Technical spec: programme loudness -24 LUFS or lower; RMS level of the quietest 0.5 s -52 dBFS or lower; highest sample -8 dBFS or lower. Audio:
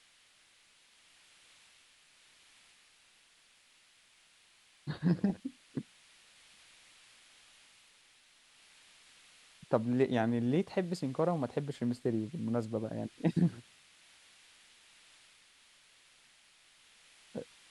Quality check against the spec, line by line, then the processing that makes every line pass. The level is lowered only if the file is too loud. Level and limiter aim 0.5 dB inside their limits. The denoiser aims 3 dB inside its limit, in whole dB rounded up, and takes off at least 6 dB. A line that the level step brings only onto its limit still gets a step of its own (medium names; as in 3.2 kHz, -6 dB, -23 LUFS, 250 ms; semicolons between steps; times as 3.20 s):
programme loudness -34.5 LUFS: pass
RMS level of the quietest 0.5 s -66 dBFS: pass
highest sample -13.0 dBFS: pass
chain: none needed